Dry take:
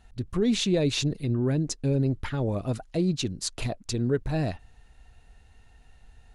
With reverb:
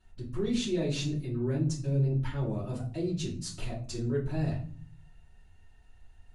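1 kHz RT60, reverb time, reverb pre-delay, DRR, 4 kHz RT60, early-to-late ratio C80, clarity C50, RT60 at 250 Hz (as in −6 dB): 0.40 s, 0.45 s, 3 ms, −9.0 dB, 0.30 s, 14.0 dB, 8.5 dB, 0.90 s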